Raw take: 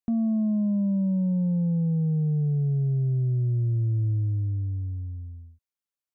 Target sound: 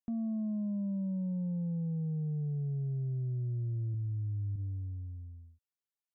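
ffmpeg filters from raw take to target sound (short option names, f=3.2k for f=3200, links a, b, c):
-filter_complex "[0:a]asettb=1/sr,asplit=3[a][b][c];[a]atrim=end=3.944[d];[b]atrim=start=3.94:end=4.56,asetpts=PTS-STARTPTS,afade=t=in:d=0.004:c=qsin,afade=t=out:st=0.616:d=0.004:c=qsin,lowshelf=f=220:g=11.5[e];[c]atrim=start=4.556[f];[d][e]acrossfade=d=0.004:c1=hsin:c2=qsin[g];[g][f]acrossfade=d=0.004:c1=qsin:c2=hsin,alimiter=limit=-23.5dB:level=0:latency=1,volume=-8dB"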